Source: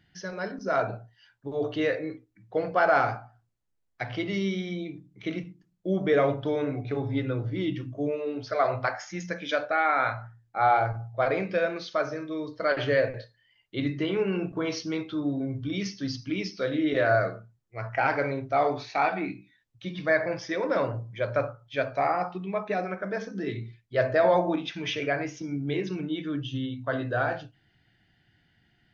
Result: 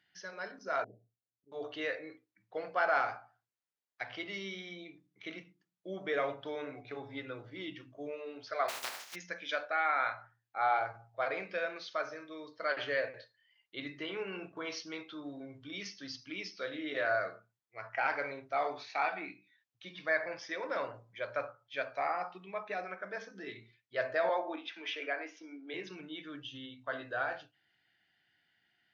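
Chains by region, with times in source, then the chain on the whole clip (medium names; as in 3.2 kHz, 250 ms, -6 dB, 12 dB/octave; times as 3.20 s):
0.84–1.52 s: inverse Chebyshev low-pass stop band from 1.1 kHz, stop band 50 dB + slow attack 175 ms
8.68–9.14 s: spectral contrast reduction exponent 0.12 + dynamic bell 680 Hz, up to +5 dB, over -43 dBFS, Q 0.8 + compression 2.5:1, threshold -29 dBFS
24.29–25.74 s: steep high-pass 210 Hz 72 dB/octave + distance through air 110 m
whole clip: high-pass 1.3 kHz 6 dB/octave; treble shelf 6 kHz -9 dB; trim -2.5 dB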